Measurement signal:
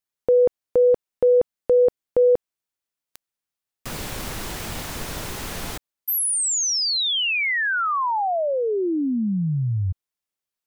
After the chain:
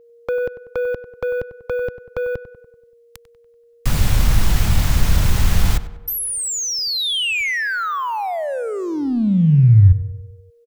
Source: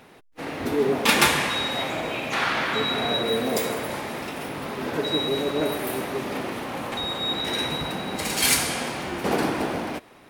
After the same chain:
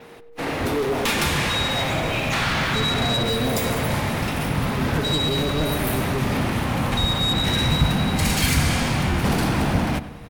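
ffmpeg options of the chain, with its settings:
-filter_complex "[0:a]adynamicequalizer=threshold=0.00631:dfrequency=9900:dqfactor=2.4:tfrequency=9900:tqfactor=2.4:attack=5:release=100:ratio=0.375:range=3.5:mode=cutabove:tftype=bell,asplit=2[s0][s1];[s1]acrusher=bits=5:mix=0:aa=0.5,volume=0.299[s2];[s0][s2]amix=inputs=2:normalize=0,acrossover=split=460|2900[s3][s4][s5];[s3]acompressor=threshold=0.0501:ratio=4[s6];[s4]acompressor=threshold=0.0501:ratio=4[s7];[s5]acompressor=threshold=0.0398:ratio=4[s8];[s6][s7][s8]amix=inputs=3:normalize=0,aeval=exprs='val(0)+0.00251*sin(2*PI*470*n/s)':c=same,asoftclip=type=tanh:threshold=0.075,asubboost=boost=8.5:cutoff=130,asplit=2[s9][s10];[s10]adelay=96,lowpass=f=2500:p=1,volume=0.211,asplit=2[s11][s12];[s12]adelay=96,lowpass=f=2500:p=1,volume=0.55,asplit=2[s13][s14];[s14]adelay=96,lowpass=f=2500:p=1,volume=0.55,asplit=2[s15][s16];[s16]adelay=96,lowpass=f=2500:p=1,volume=0.55,asplit=2[s17][s18];[s18]adelay=96,lowpass=f=2500:p=1,volume=0.55,asplit=2[s19][s20];[s20]adelay=96,lowpass=f=2500:p=1,volume=0.55[s21];[s11][s13][s15][s17][s19][s21]amix=inputs=6:normalize=0[s22];[s9][s22]amix=inputs=2:normalize=0,volume=1.88"

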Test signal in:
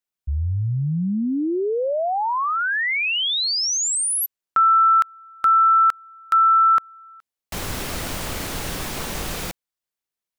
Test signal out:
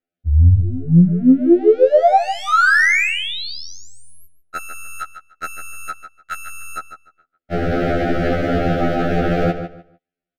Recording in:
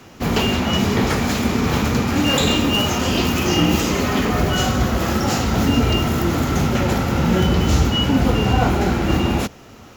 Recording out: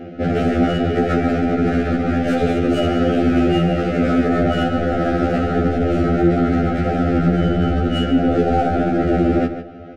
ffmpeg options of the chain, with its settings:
-filter_complex "[0:a]lowshelf=f=190:g=5,aeval=exprs='(tanh(3.55*val(0)+0.25)-tanh(0.25))/3.55':c=same,firequalizer=gain_entry='entry(100,0);entry(220,9);entry(710,13);entry(7500,-22)':delay=0.05:min_phase=1,asplit=2[s0][s1];[s1]adynamicsmooth=sensitivity=1:basefreq=670,volume=1.26[s2];[s0][s2]amix=inputs=2:normalize=0,asuperstop=centerf=1000:order=20:qfactor=2.3,dynaudnorm=f=230:g=7:m=3.76,alimiter=limit=0.447:level=0:latency=1:release=131,asplit=2[s3][s4];[s4]adelay=149,lowpass=f=4800:p=1,volume=0.335,asplit=2[s5][s6];[s6]adelay=149,lowpass=f=4800:p=1,volume=0.22,asplit=2[s7][s8];[s8]adelay=149,lowpass=f=4800:p=1,volume=0.22[s9];[s5][s7][s9]amix=inputs=3:normalize=0[s10];[s3][s10]amix=inputs=2:normalize=0,afftfilt=real='re*2*eq(mod(b,4),0)':imag='im*2*eq(mod(b,4),0)':win_size=2048:overlap=0.75"

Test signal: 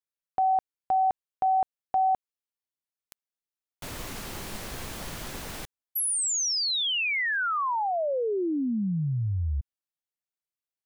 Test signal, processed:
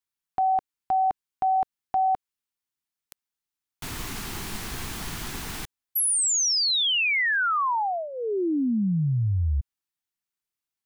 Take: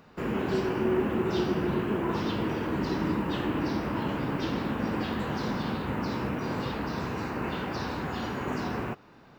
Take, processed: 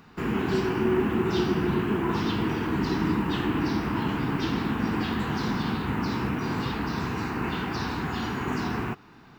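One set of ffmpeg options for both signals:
-af "equalizer=f=560:t=o:w=0.42:g=-14,volume=1.58"

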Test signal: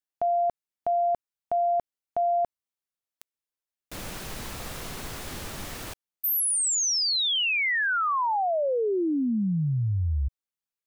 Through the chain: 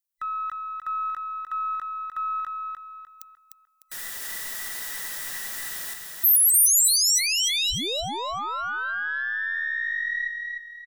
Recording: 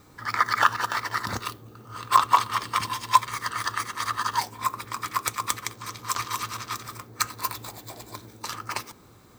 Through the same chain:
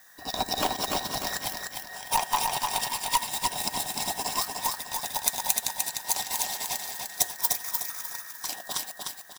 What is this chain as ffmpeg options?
-af "afftfilt=real='real(if(between(b,1,1012),(2*floor((b-1)/92)+1)*92-b,b),0)':imag='imag(if(between(b,1,1012),(2*floor((b-1)/92)+1)*92-b,b),0)*if(between(b,1,1012),-1,1)':win_size=2048:overlap=0.75,aeval=exprs='(tanh(3.16*val(0)+0.25)-tanh(0.25))/3.16':c=same,aecho=1:1:301|602|903|1204|1505:0.631|0.227|0.0818|0.0294|0.0106,crystalizer=i=3.5:c=0,volume=0.447"

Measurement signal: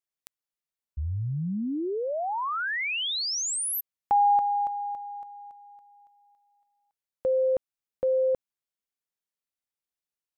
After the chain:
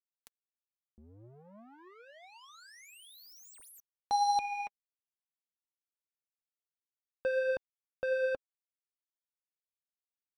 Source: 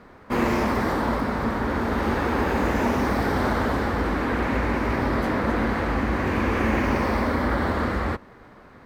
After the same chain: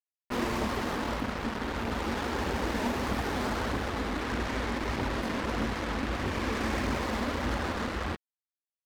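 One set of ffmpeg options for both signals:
-af "acrusher=bits=3:mix=0:aa=0.5,aphaser=in_gain=1:out_gain=1:delay=5:decay=0.29:speed=1.6:type=triangular,volume=0.355"

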